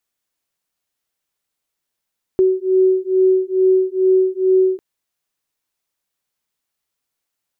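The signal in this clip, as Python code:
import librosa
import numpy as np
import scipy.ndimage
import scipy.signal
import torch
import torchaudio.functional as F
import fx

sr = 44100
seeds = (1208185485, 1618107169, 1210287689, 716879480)

y = fx.two_tone_beats(sr, length_s=2.4, hz=374.0, beat_hz=2.3, level_db=-15.0)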